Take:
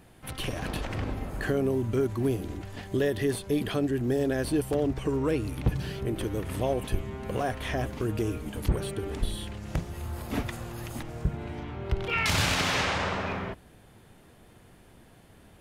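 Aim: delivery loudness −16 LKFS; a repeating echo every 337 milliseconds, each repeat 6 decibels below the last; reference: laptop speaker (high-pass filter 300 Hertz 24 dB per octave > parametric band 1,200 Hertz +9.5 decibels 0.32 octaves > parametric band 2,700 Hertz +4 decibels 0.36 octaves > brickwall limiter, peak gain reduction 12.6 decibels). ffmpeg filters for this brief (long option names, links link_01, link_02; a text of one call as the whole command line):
ffmpeg -i in.wav -af "highpass=frequency=300:width=0.5412,highpass=frequency=300:width=1.3066,equalizer=frequency=1200:width_type=o:width=0.32:gain=9.5,equalizer=frequency=2700:width_type=o:width=0.36:gain=4,aecho=1:1:337|674|1011|1348|1685|2022:0.501|0.251|0.125|0.0626|0.0313|0.0157,volume=19dB,alimiter=limit=-6dB:level=0:latency=1" out.wav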